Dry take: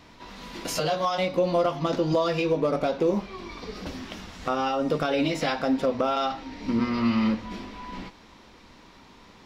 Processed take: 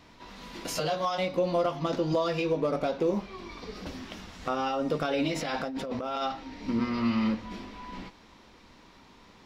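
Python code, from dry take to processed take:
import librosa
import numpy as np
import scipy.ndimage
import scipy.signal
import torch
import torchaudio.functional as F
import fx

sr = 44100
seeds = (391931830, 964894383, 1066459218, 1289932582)

y = fx.over_compress(x, sr, threshold_db=-29.0, ratio=-1.0, at=(5.36, 6.22))
y = F.gain(torch.from_numpy(y), -3.5).numpy()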